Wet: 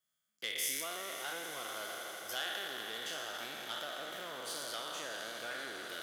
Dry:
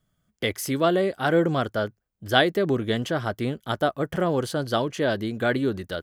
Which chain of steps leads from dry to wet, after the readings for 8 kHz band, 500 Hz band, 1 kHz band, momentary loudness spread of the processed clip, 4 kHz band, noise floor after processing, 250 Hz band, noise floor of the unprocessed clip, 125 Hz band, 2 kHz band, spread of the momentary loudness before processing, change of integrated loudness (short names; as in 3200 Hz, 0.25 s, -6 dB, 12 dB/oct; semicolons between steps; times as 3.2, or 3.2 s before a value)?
-1.0 dB, -22.0 dB, -15.5 dB, 7 LU, -7.5 dB, -85 dBFS, -28.0 dB, -76 dBFS, -35.0 dB, -11.5 dB, 7 LU, -14.5 dB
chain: spectral trails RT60 1.88 s; high shelf 5500 Hz -11 dB; compressor, threshold -21 dBFS, peak gain reduction 9.5 dB; differentiator; on a send: swelling echo 81 ms, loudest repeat 8, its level -17 dB; on the sum: core saturation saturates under 3200 Hz; gain +1 dB